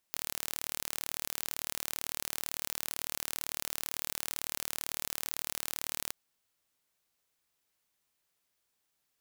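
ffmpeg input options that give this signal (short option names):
-f lavfi -i "aevalsrc='0.398*eq(mod(n,1164),0)':d=5.99:s=44100"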